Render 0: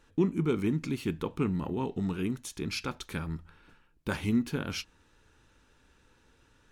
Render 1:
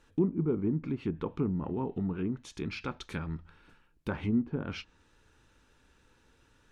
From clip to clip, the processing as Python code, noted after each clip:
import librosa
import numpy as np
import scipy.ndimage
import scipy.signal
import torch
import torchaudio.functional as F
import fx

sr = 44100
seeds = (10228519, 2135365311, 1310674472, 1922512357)

y = fx.env_lowpass_down(x, sr, base_hz=800.0, full_db=-26.0)
y = y * librosa.db_to_amplitude(-1.0)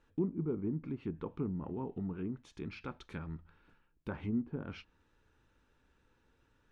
y = fx.high_shelf(x, sr, hz=4000.0, db=-10.5)
y = y * librosa.db_to_amplitude(-6.0)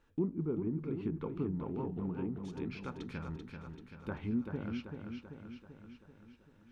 y = fx.echo_feedback(x, sr, ms=387, feedback_pct=58, wet_db=-6.0)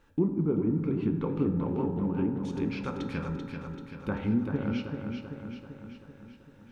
y = fx.rev_fdn(x, sr, rt60_s=1.7, lf_ratio=1.0, hf_ratio=0.45, size_ms=11.0, drr_db=5.5)
y = y * librosa.db_to_amplitude(7.0)